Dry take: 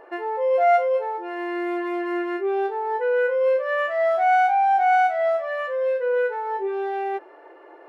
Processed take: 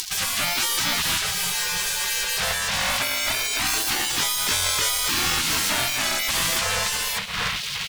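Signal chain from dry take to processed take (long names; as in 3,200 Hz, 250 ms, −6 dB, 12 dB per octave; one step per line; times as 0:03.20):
mu-law and A-law mismatch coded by A
on a send at −16 dB: convolution reverb RT60 2.8 s, pre-delay 64 ms
on the sum: upward compression, threshold −28 dBFS
gain on a spectral selection 0:02.53–0:04.10, 700–1,700 Hz −28 dB
fuzz pedal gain 40 dB, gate −44 dBFS
pitch-shifted copies added −7 semitones −7 dB, −3 semitones −10 dB, +7 semitones −17 dB
gate on every frequency bin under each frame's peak −25 dB weak
single-tap delay 293 ms −22 dB
level +4.5 dB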